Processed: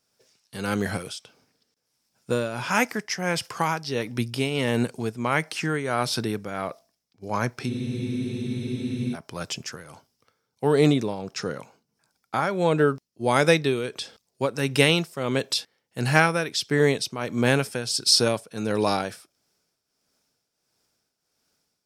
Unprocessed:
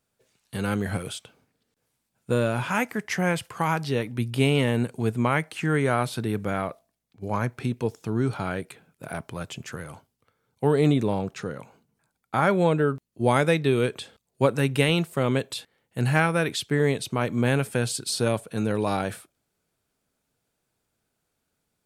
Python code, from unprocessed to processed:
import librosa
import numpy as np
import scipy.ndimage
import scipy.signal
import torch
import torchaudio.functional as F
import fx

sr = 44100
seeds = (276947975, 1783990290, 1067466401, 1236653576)

y = fx.peak_eq(x, sr, hz=5300.0, db=14.0, octaves=0.43)
y = fx.tremolo_shape(y, sr, shape='triangle', hz=1.5, depth_pct=70)
y = fx.low_shelf(y, sr, hz=130.0, db=-9.5)
y = fx.spec_freeze(y, sr, seeds[0], at_s=7.72, hold_s=1.41)
y = F.gain(torch.from_numpy(y), 4.5).numpy()